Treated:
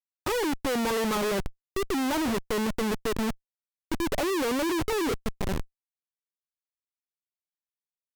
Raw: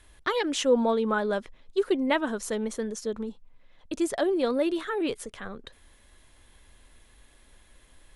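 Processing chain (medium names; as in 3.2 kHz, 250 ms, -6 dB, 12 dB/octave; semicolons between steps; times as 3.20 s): rippled Chebyshev low-pass 1.3 kHz, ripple 6 dB; Schmitt trigger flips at -39.5 dBFS; trim +5.5 dB; MP3 320 kbps 48 kHz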